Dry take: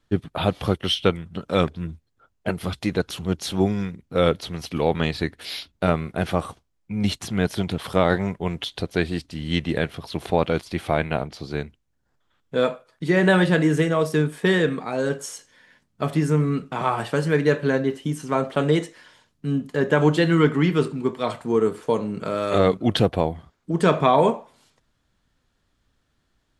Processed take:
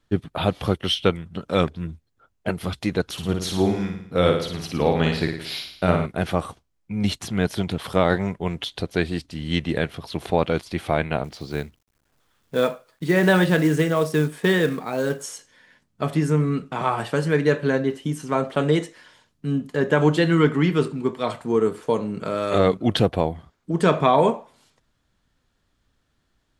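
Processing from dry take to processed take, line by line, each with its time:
3.12–6.06 s: flutter echo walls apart 9.5 m, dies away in 0.63 s
11.24–15.24 s: companded quantiser 6-bit

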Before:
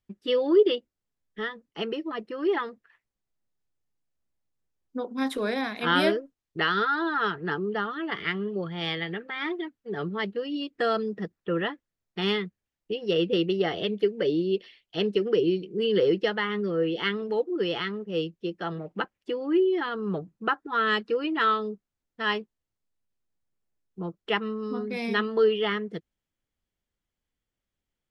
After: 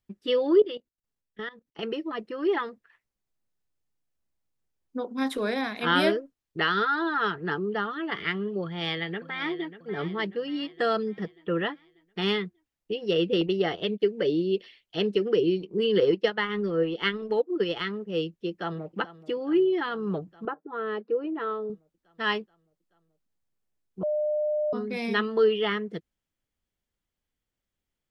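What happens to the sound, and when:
0.60–1.83 s: level held to a coarse grid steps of 17 dB
8.62–9.76 s: echo throw 590 ms, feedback 50%, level -13.5 dB
13.41–14.02 s: gate -33 dBFS, range -20 dB
15.60–17.84 s: transient shaper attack +3 dB, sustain -10 dB
18.50–18.96 s: echo throw 430 ms, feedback 75%, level -16 dB
20.45–21.70 s: band-pass filter 450 Hz, Q 1.2
24.03–24.73 s: bleep 603 Hz -23.5 dBFS

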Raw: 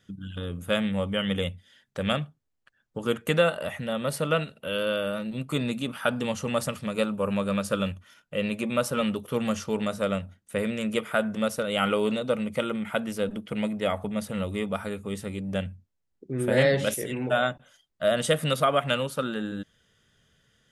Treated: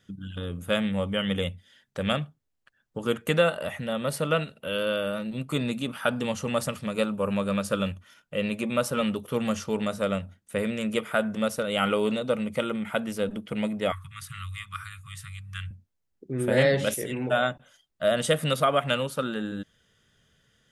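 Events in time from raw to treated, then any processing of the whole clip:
13.92–15.71 s: Chebyshev band-stop 150–1100 Hz, order 5

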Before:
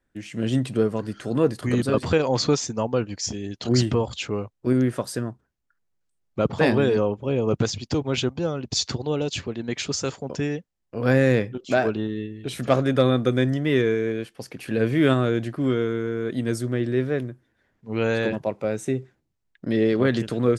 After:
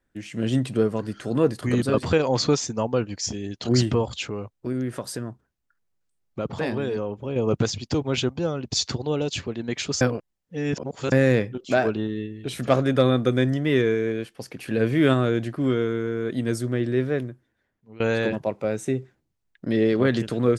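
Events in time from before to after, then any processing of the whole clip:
4.26–7.36 s: compression 2:1, threshold -28 dBFS
10.01–11.12 s: reverse
17.17–18.00 s: fade out, to -21.5 dB

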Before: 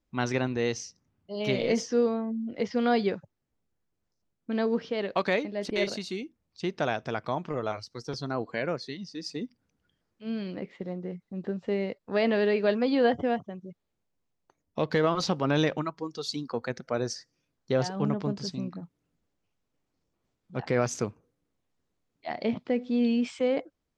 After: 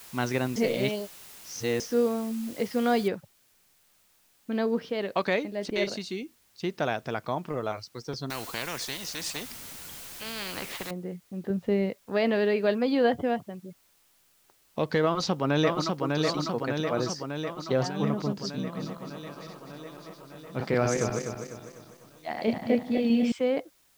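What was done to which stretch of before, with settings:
0.56–1.80 s: reverse
3.08 s: noise floor step -48 dB -65 dB
8.30–10.91 s: spectrum-flattening compressor 4:1
11.50–11.90 s: bass shelf 260 Hz +8.5 dB
15.04–16.03 s: echo throw 600 ms, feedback 70%, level -3 dB
18.60–23.32 s: backward echo that repeats 125 ms, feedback 65%, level -3 dB

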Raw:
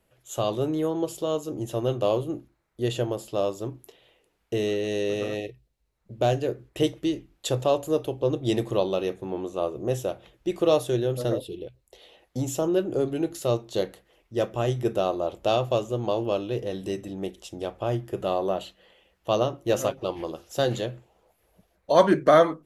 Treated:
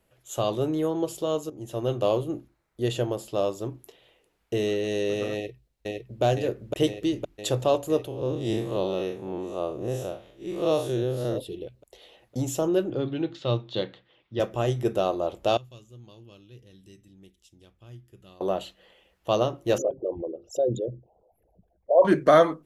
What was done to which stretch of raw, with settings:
1.50–2.09 s: fade in equal-power, from -14 dB
5.34–6.22 s: echo throw 510 ms, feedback 75%, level -0.5 dB
8.07–11.36 s: spectral blur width 109 ms
12.90–14.40 s: cabinet simulation 110–4200 Hz, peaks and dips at 120 Hz +6 dB, 420 Hz -6 dB, 680 Hz -6 dB, 3.5 kHz +7 dB
15.57–18.41 s: amplifier tone stack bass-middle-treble 6-0-2
19.78–22.05 s: resonances exaggerated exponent 3

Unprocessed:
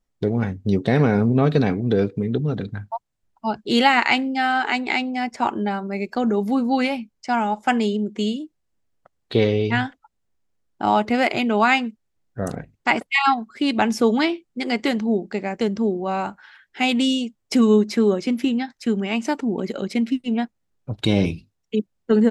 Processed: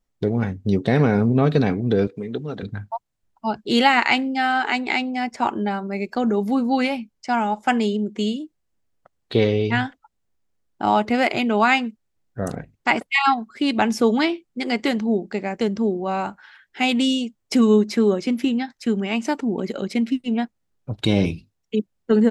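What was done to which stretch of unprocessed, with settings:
2.07–2.63 s: high-pass 430 Hz 6 dB/octave

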